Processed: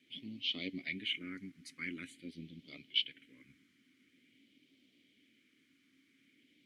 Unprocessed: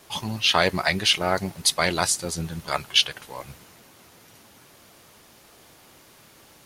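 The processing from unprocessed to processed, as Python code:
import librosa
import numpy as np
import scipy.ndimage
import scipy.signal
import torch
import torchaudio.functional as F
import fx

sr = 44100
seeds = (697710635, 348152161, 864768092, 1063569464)

y = fx.phaser_stages(x, sr, stages=4, low_hz=570.0, high_hz=1600.0, hz=0.47, feedback_pct=5)
y = fx.dmg_noise_colour(y, sr, seeds[0], colour='white', level_db=-54.0)
y = fx.vowel_filter(y, sr, vowel='i')
y = y * librosa.db_to_amplitude(-3.0)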